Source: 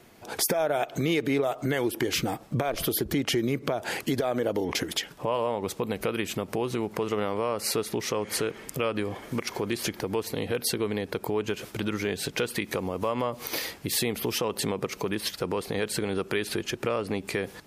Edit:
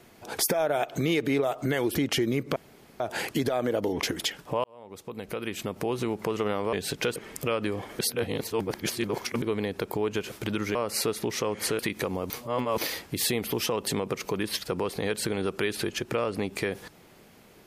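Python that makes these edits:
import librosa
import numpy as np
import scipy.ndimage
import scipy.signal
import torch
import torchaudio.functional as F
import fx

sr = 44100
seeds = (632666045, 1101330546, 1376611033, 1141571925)

y = fx.edit(x, sr, fx.cut(start_s=1.95, length_s=1.16),
    fx.insert_room_tone(at_s=3.72, length_s=0.44),
    fx.fade_in_span(start_s=5.36, length_s=1.3),
    fx.swap(start_s=7.45, length_s=1.04, other_s=12.08, other_length_s=0.43),
    fx.reverse_span(start_s=9.32, length_s=1.43),
    fx.reverse_span(start_s=13.02, length_s=0.48), tone=tone)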